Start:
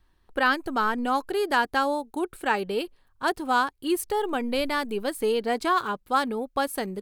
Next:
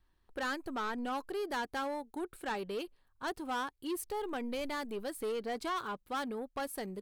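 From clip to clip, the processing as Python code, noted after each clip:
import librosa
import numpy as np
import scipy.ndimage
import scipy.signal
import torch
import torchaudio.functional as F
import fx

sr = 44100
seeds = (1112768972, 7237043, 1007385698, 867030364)

y = 10.0 ** (-23.0 / 20.0) * np.tanh(x / 10.0 ** (-23.0 / 20.0))
y = y * 10.0 ** (-8.0 / 20.0)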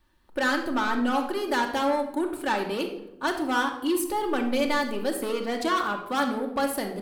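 y = fx.low_shelf(x, sr, hz=83.0, db=-9.0)
y = fx.room_shoebox(y, sr, seeds[0], volume_m3=2700.0, walls='furnished', distance_m=2.5)
y = y * 10.0 ** (9.0 / 20.0)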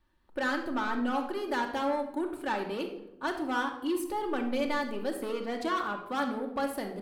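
y = fx.high_shelf(x, sr, hz=4200.0, db=-7.0)
y = y * 10.0 ** (-5.0 / 20.0)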